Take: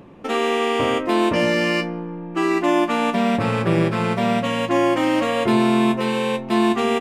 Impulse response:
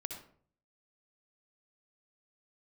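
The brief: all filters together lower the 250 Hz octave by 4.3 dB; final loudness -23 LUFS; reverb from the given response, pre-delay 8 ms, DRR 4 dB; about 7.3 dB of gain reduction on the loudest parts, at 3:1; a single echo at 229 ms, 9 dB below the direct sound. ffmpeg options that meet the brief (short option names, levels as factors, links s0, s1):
-filter_complex "[0:a]equalizer=f=250:t=o:g=-6,acompressor=threshold=0.0501:ratio=3,aecho=1:1:229:0.355,asplit=2[s0][s1];[1:a]atrim=start_sample=2205,adelay=8[s2];[s1][s2]afir=irnorm=-1:irlink=0,volume=0.708[s3];[s0][s3]amix=inputs=2:normalize=0,volume=1.41"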